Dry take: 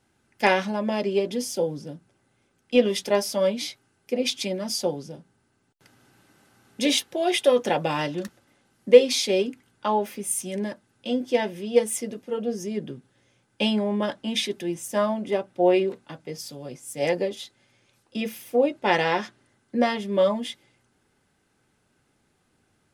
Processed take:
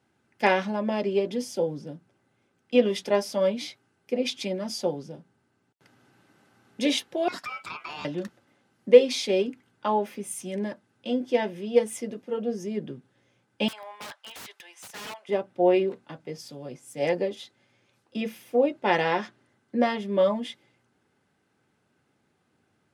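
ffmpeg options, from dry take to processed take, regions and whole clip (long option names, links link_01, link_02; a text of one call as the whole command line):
ffmpeg -i in.wav -filter_complex "[0:a]asettb=1/sr,asplit=3[link_01][link_02][link_03];[link_01]atrim=end=7.284[link_04];[link_02]atrim=start=7.28:end=8.05,asetpts=PTS-STARTPTS,afade=type=in:duration=0.004:curve=qsin,afade=type=out:start_time=0.766:duration=0.004:curve=qsin,highpass=600,acompressor=threshold=-28dB:ratio=4:attack=3.2:release=140:knee=1:detection=peak,aeval=exprs='val(0)*sin(2*PI*1800*n/s)':channel_layout=same[link_05];[link_03]atrim=start=8.046[link_06];[link_04][link_05]acrossfade=duration=0.004:curve1=hsin:curve2=qsin[link_07];[link_07][link_06]acrossfade=duration=0.004:curve1=qsin:curve2=hsin,asettb=1/sr,asplit=3[link_08][link_09][link_10];[link_08]atrim=end=13.684[link_11];[link_09]atrim=start=13.68:end=15.29,asetpts=PTS-STARTPTS,afade=type=in:duration=0.004:curve=qsin,afade=type=out:start_time=1.606:duration=0.004:curve=qsin,highpass=frequency=880:width=0.5412,highpass=frequency=880:width=1.3066,aeval=exprs='(mod(31.6*val(0)+1,2)-1)/31.6':channel_layout=same[link_12];[link_10]atrim=start=15.286[link_13];[link_11][link_12]acrossfade=duration=0.004:curve1=hsin:curve2=qsin[link_14];[link_14][link_13]acrossfade=duration=0.004:curve1=qsin:curve2=hsin,highpass=99,aemphasis=mode=reproduction:type=cd,volume=-1.5dB" out.wav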